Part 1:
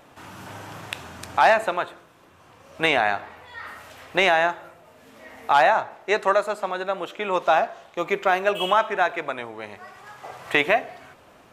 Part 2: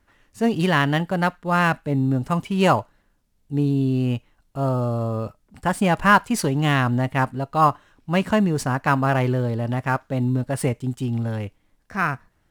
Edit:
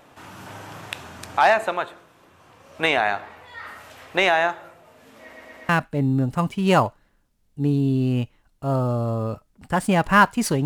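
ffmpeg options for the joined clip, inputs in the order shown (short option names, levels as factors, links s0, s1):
-filter_complex "[0:a]apad=whole_dur=10.65,atrim=end=10.65,asplit=4[s0][s1][s2][s3];[s0]atrim=end=5.332[s4];[s1]atrim=start=5.208:end=5.332[s5];[s2]atrim=start=5.208:end=5.332[s6];[s3]atrim=start=5.208:end=5.332[s7];[1:a]atrim=start=1.618:end=6.58[s8];[s4][s5]acrossfade=d=0.004:c1=hsin:c2=hsin[s9];[s9][s6]acrossfade=d=0.004:c1=hsin:c2=hsin[s10];[s10][s7]acrossfade=d=0.004:c1=hsin:c2=hsin[s11];[s11][s8]acrossfade=d=0.004:c1=hsin:c2=hsin"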